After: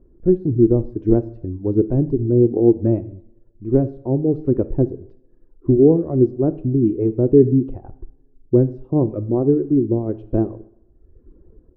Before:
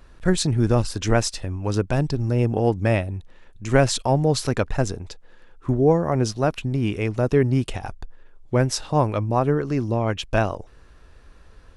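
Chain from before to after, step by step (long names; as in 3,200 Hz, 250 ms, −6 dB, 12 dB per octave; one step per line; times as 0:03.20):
de-essing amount 55%
reverb reduction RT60 1.1 s
automatic gain control gain up to 7 dB
low-pass with resonance 350 Hz, resonance Q 4
coupled-rooms reverb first 0.63 s, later 2.1 s, from −28 dB, DRR 12.5 dB
level −3.5 dB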